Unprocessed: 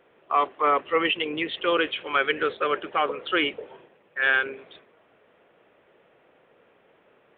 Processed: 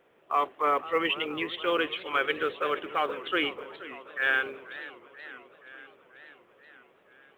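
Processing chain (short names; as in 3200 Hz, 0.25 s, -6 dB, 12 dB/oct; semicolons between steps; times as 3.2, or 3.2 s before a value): companded quantiser 8-bit; warbling echo 0.482 s, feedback 67%, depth 219 cents, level -16 dB; gain -4 dB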